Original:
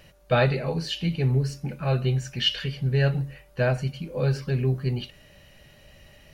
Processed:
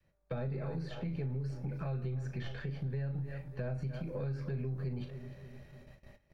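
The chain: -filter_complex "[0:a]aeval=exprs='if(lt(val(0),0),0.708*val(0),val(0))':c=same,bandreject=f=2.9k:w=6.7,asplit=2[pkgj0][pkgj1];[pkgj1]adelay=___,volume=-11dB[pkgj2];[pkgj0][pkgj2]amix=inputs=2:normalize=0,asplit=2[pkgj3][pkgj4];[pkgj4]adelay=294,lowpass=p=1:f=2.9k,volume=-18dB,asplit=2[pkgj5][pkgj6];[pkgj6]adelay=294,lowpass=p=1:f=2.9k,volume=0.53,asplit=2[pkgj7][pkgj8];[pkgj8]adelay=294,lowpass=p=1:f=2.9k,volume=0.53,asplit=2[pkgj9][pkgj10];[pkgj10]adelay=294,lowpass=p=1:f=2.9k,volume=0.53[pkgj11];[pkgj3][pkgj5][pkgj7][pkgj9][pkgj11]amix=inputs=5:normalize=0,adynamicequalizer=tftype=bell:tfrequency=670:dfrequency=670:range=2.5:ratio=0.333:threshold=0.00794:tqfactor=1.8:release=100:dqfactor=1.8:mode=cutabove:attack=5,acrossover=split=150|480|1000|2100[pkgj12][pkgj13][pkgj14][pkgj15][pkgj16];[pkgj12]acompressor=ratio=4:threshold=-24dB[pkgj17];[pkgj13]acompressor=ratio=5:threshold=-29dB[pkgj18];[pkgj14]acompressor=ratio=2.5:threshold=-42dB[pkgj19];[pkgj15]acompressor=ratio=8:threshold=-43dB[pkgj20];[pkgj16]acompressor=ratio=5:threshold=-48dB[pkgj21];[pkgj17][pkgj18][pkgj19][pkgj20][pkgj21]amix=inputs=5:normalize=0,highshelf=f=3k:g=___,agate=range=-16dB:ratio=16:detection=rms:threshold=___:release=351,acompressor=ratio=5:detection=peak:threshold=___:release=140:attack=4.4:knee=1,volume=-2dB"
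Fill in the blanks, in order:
37, -12, -48dB, -32dB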